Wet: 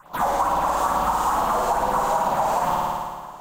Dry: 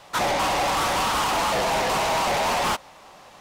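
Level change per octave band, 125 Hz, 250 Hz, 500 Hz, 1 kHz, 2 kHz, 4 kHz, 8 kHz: -1.0 dB, -0.5 dB, 0.0 dB, +3.5 dB, -6.5 dB, -12.0 dB, -5.5 dB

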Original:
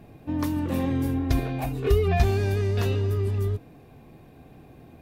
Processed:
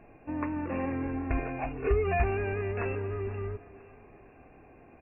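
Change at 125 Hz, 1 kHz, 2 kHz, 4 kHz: -10.5 dB, -1.0 dB, 0.0 dB, under -15 dB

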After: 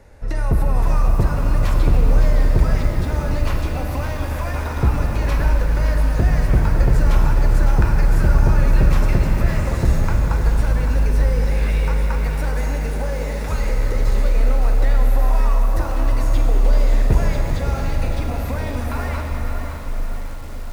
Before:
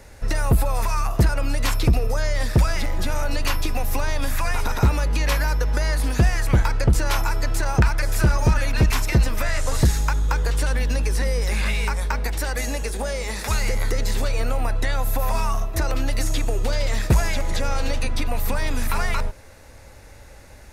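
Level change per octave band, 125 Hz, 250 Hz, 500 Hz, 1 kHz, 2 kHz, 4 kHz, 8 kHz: +3.5 dB, +2.5 dB, +1.5 dB, 0.0 dB, -3.0 dB, -6.5 dB, -8.0 dB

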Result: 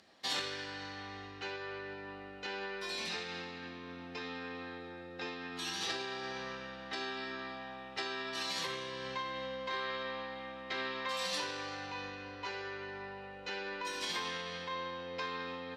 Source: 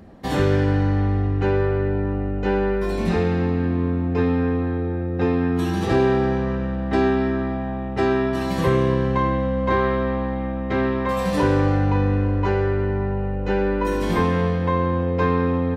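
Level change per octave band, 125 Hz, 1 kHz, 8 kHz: -33.5 dB, -15.5 dB, no reading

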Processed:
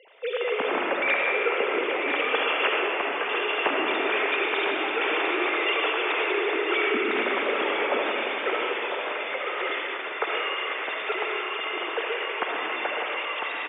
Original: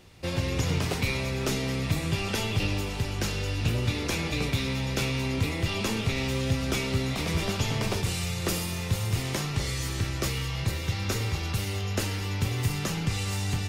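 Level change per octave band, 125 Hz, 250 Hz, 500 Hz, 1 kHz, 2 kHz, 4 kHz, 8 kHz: under -35 dB, -3.5 dB, +8.0 dB, +10.0 dB, +9.5 dB, +2.0 dB, under -40 dB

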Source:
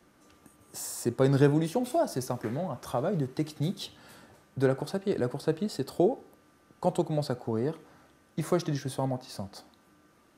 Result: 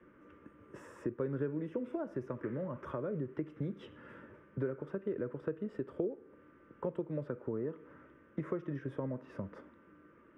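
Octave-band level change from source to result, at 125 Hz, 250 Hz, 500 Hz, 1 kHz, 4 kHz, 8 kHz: -11.0 dB, -9.0 dB, -9.0 dB, -14.5 dB, under -20 dB, under -30 dB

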